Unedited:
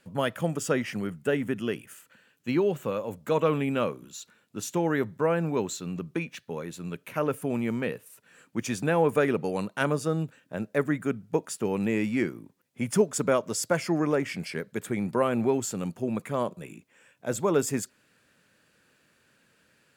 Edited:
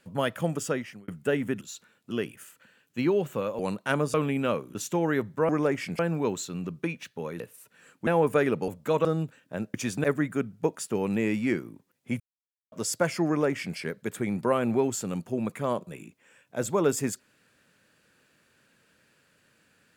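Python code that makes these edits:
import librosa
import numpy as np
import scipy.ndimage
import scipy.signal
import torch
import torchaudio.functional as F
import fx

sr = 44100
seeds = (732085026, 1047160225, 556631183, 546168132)

y = fx.edit(x, sr, fx.fade_out_span(start_s=0.58, length_s=0.5),
    fx.swap(start_s=3.09, length_s=0.37, other_s=9.5, other_length_s=0.55),
    fx.move(start_s=4.07, length_s=0.5, to_s=1.61),
    fx.cut(start_s=6.72, length_s=1.2),
    fx.move(start_s=8.59, length_s=0.3, to_s=10.74),
    fx.silence(start_s=12.9, length_s=0.52),
    fx.duplicate(start_s=13.97, length_s=0.5, to_s=5.31), tone=tone)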